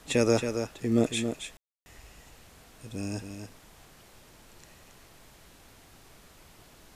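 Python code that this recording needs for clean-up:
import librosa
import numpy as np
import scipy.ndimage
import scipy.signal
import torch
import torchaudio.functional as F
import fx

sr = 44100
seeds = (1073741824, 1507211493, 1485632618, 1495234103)

y = fx.fix_ambience(x, sr, seeds[0], print_start_s=6.27, print_end_s=6.77, start_s=1.57, end_s=1.86)
y = fx.noise_reduce(y, sr, print_start_s=6.27, print_end_s=6.77, reduce_db=21.0)
y = fx.fix_echo_inverse(y, sr, delay_ms=274, level_db=-7.5)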